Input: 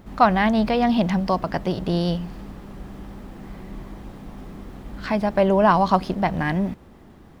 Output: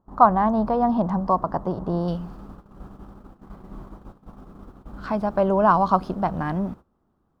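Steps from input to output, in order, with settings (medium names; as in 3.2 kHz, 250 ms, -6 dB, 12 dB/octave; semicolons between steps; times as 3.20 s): gate -36 dBFS, range -19 dB; resonant high shelf 1.6 kHz -13.5 dB, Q 3, from 2.08 s -6 dB; trim -3 dB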